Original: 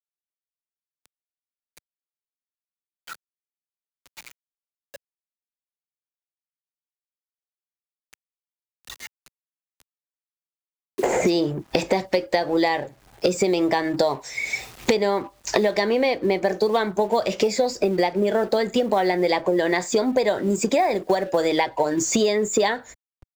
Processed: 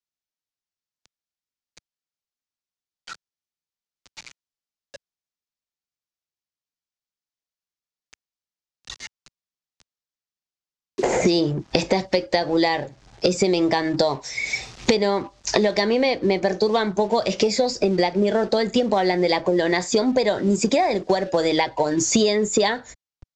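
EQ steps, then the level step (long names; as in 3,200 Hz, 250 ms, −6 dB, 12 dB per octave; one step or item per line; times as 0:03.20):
low-pass filter 6,200 Hz 24 dB per octave
bass and treble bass +5 dB, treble +8 dB
0.0 dB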